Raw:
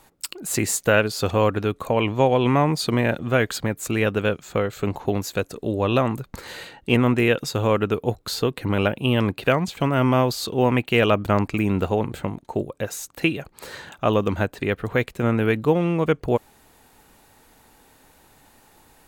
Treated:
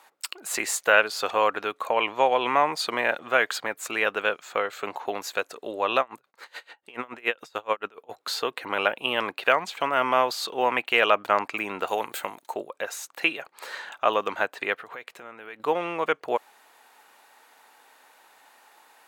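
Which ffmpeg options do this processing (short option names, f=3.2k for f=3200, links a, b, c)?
-filter_complex "[0:a]asplit=3[a][b][c];[a]afade=t=out:st=5.99:d=0.02[d];[b]aeval=exprs='val(0)*pow(10,-29*(0.5-0.5*cos(2*PI*7*n/s))/20)':c=same,afade=t=in:st=5.99:d=0.02,afade=t=out:st=8.09:d=0.02[e];[c]afade=t=in:st=8.09:d=0.02[f];[d][e][f]amix=inputs=3:normalize=0,asettb=1/sr,asplit=3[g][h][i];[g]atrim=end=11.874[j];[h]atrim=start=11.87:end=12.54,asetpts=PTS-STARTPTS,afade=t=in:d=0.004:c=qsin,afade=t=out:st=0.666:d=0.004:c=qsin,aemphasis=mode=production:type=75fm[k];[i]atrim=start=12.536[l];[j][k]acrossfade=d=0.004:c1=hsin:c2=qsin[m];[m][l]acrossfade=d=0.004:c1=qsin:c2=hsin,asettb=1/sr,asplit=3[n][o][p];[n]atrim=end=14.774[q];[o]atrim=start=14.77:end=15.6,asetpts=PTS-STARTPTS,afade=t=in:d=0.004:c=qsin,afade=t=out:st=0.826:d=0.004:c=qsin,acompressor=threshold=-32dB:ratio=8:attack=3.2:release=140:knee=1:detection=peak[r];[p]atrim=start=15.596[s];[q][r]acrossfade=d=0.004:c1=hsin:c2=qsin[t];[t][s]acrossfade=d=0.004:c1=qsin:c2=hsin,highpass=820,highshelf=f=4k:g=-10.5,volume=4.5dB"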